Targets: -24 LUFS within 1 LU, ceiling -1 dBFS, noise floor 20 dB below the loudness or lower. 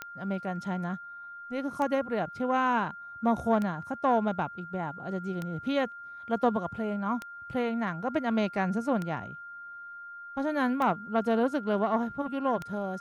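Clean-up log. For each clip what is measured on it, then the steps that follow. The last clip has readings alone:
clicks 8; steady tone 1400 Hz; tone level -41 dBFS; loudness -30.5 LUFS; peak -13.0 dBFS; loudness target -24.0 LUFS
-> de-click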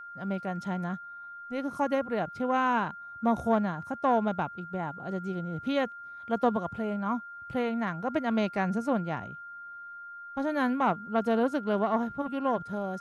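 clicks 0; steady tone 1400 Hz; tone level -41 dBFS
-> notch 1400 Hz, Q 30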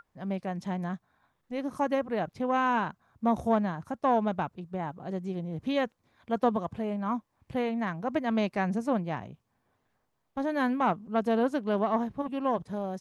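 steady tone none; loudness -30.5 LUFS; peak -13.0 dBFS; loudness target -24.0 LUFS
-> gain +6.5 dB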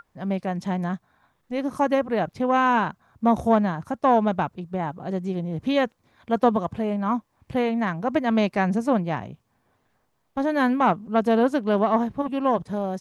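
loudness -24.0 LUFS; peak -6.5 dBFS; noise floor -70 dBFS

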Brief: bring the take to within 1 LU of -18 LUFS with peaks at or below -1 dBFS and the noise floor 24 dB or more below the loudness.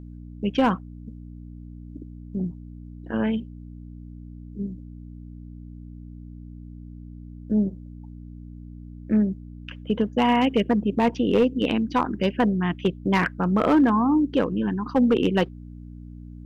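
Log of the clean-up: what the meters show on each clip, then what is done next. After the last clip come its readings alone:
clipped 0.3%; flat tops at -12.5 dBFS; hum 60 Hz; harmonics up to 300 Hz; hum level -38 dBFS; loudness -23.5 LUFS; peak -12.5 dBFS; loudness target -18.0 LUFS
-> clip repair -12.5 dBFS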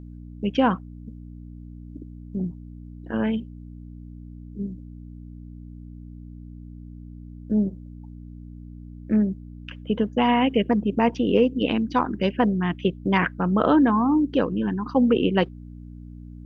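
clipped 0.0%; hum 60 Hz; harmonics up to 300 Hz; hum level -38 dBFS
-> de-hum 60 Hz, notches 5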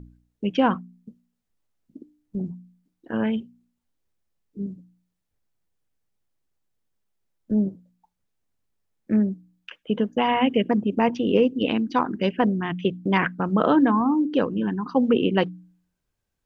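hum none; loudness -23.5 LUFS; peak -5.0 dBFS; loudness target -18.0 LUFS
-> gain +5.5 dB; limiter -1 dBFS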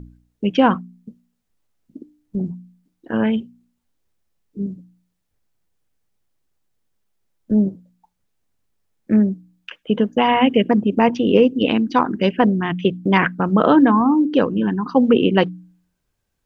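loudness -18.0 LUFS; peak -1.0 dBFS; noise floor -73 dBFS

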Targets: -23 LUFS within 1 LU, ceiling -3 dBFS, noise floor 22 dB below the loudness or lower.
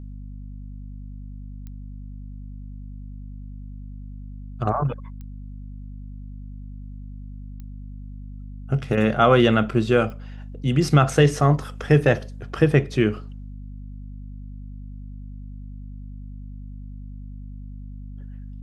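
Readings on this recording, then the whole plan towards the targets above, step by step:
clicks 4; hum 50 Hz; harmonics up to 250 Hz; hum level -33 dBFS; loudness -20.5 LUFS; peak -2.5 dBFS; loudness target -23.0 LUFS
-> de-click; notches 50/100/150/200/250 Hz; gain -2.5 dB

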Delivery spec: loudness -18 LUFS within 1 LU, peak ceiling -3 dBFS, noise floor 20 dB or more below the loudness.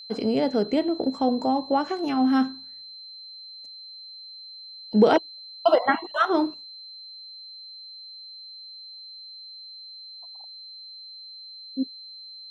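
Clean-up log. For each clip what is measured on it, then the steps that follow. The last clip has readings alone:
steady tone 4100 Hz; tone level -40 dBFS; loudness -24.0 LUFS; peak -6.0 dBFS; loudness target -18.0 LUFS
-> notch 4100 Hz, Q 30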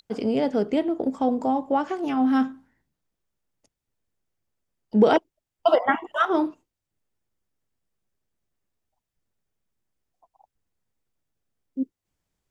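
steady tone none; loudness -24.0 LUFS; peak -6.0 dBFS; loudness target -18.0 LUFS
-> gain +6 dB; limiter -3 dBFS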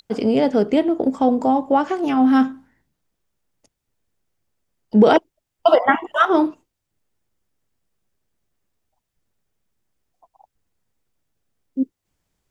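loudness -18.0 LUFS; peak -3.0 dBFS; noise floor -80 dBFS

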